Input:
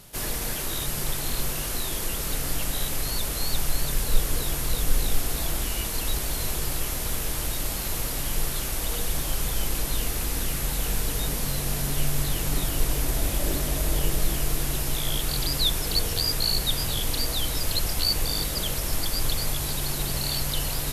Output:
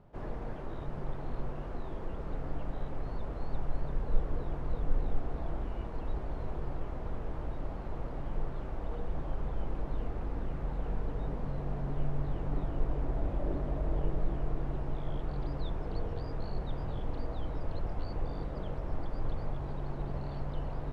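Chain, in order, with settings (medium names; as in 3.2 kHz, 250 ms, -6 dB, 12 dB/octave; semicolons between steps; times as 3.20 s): Chebyshev low-pass 860 Hz, order 2; trim -5 dB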